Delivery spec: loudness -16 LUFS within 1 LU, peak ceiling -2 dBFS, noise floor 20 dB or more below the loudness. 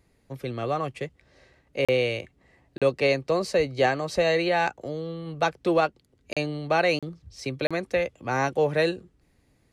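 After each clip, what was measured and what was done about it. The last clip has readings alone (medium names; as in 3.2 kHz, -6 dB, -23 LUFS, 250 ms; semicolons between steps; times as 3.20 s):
dropouts 5; longest dropout 36 ms; loudness -26.0 LUFS; peak level -11.0 dBFS; loudness target -16.0 LUFS
-> interpolate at 1.85/2.78/6.33/6.99/7.67 s, 36 ms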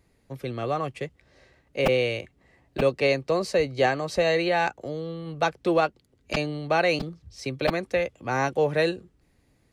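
dropouts 0; loudness -26.0 LUFS; peak level -8.5 dBFS; loudness target -16.0 LUFS
-> trim +10 dB; peak limiter -2 dBFS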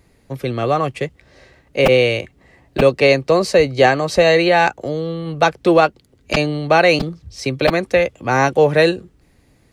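loudness -16.0 LUFS; peak level -2.0 dBFS; noise floor -56 dBFS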